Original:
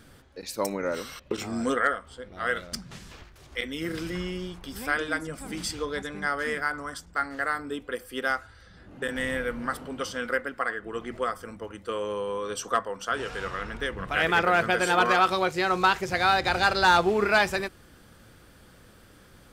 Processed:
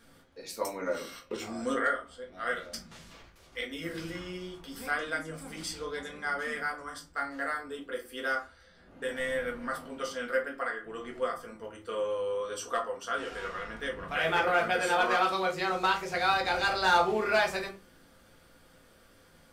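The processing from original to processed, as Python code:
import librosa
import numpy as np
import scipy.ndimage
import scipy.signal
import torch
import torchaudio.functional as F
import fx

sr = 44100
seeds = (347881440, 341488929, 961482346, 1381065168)

y = fx.low_shelf(x, sr, hz=210.0, db=-10.5)
y = fx.room_shoebox(y, sr, seeds[0], volume_m3=130.0, walls='furnished', distance_m=1.7)
y = F.gain(torch.from_numpy(y), -7.5).numpy()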